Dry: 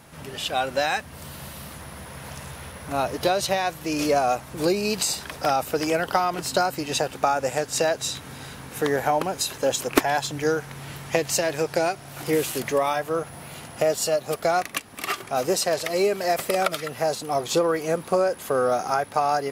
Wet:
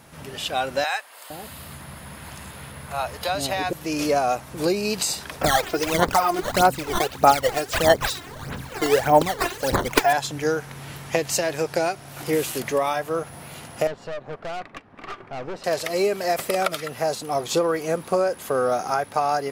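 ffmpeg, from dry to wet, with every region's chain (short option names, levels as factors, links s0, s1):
-filter_complex "[0:a]asettb=1/sr,asplit=3[s0][s1][s2];[s0]atrim=end=0.844[s3];[s1]atrim=start=0.84:end=3.73,asetpts=PTS-STARTPTS,afade=t=in:d=0.004:c=qsin,afade=t=out:st=2.886:d=0.004:c=qsin,bandreject=f=5800:w=6.6,acrossover=split=540[s4][s5];[s4]adelay=460[s6];[s6][s5]amix=inputs=2:normalize=0,atrim=end_sample=127449[s7];[s2]atrim=start=3.726[s8];[s3][s7]acrossfade=d=0.004:c1=hsin:c2=qsin[s9];[s9][s8]acrossfade=d=0.004:c1=qsin:c2=hsin,asettb=1/sr,asplit=3[s10][s11][s12];[s10]atrim=end=5.414[s13];[s11]atrim=start=5.41:end=10.13,asetpts=PTS-STARTPTS,afade=t=in:d=0.004:c=qsin,afade=t=out:st=4.716:d=0.004:c=qsin,acrusher=samples=10:mix=1:aa=0.000001:lfo=1:lforange=16:lforate=2.1,aphaser=in_gain=1:out_gain=1:delay=2.9:decay=0.67:speed=1.6:type=sinusoidal[s14];[s12]atrim=start=10.126[s15];[s13][s14]acrossfade=d=0.004:c1=hsin:c2=qsin[s16];[s16][s15]acrossfade=d=0.004:c1=qsin:c2=hsin,asettb=1/sr,asplit=3[s17][s18][s19];[s17]atrim=end=13.874[s20];[s18]atrim=start=13.87:end=15.64,asetpts=PTS-STARTPTS,afade=t=in:d=0.004:c=qsin,afade=t=out:st=1.766:d=0.004:c=qsin,lowpass=1700,aeval=exprs='(tanh(28.2*val(0)+0.65)-tanh(0.65))/28.2':c=same[s21];[s19]atrim=start=15.636[s22];[s20][s21]acrossfade=d=0.004:c1=hsin:c2=qsin[s23];[s23][s22]acrossfade=d=0.004:c1=qsin:c2=hsin"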